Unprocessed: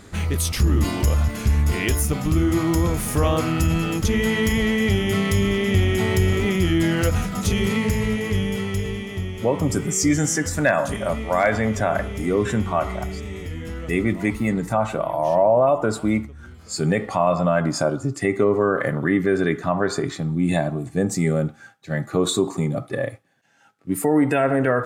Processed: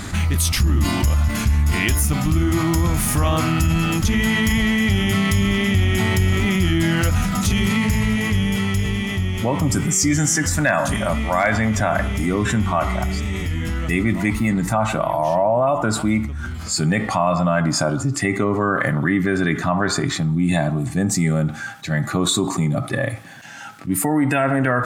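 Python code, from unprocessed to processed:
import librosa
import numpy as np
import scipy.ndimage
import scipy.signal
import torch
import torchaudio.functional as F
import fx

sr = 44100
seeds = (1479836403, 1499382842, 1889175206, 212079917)

y = fx.peak_eq(x, sr, hz=450.0, db=-11.5, octaves=0.7)
y = fx.env_flatten(y, sr, amount_pct=50)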